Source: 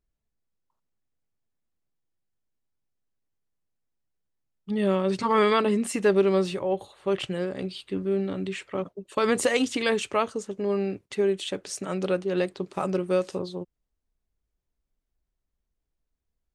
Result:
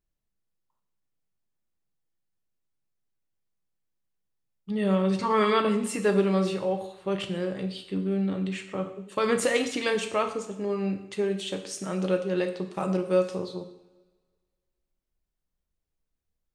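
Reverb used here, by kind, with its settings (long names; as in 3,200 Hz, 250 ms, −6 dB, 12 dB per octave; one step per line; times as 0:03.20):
coupled-rooms reverb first 0.65 s, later 1.7 s, from −17 dB, DRR 5 dB
level −2.5 dB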